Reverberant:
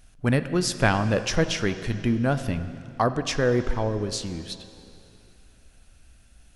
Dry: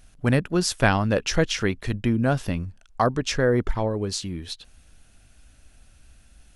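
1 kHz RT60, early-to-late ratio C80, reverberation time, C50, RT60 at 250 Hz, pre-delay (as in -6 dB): 2.8 s, 12.0 dB, 2.8 s, 11.5 dB, 2.8 s, 8 ms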